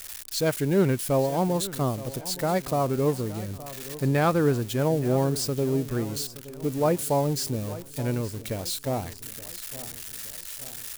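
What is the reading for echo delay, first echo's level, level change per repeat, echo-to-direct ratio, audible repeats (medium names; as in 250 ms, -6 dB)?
871 ms, -16.5 dB, -6.0 dB, -15.5 dB, 3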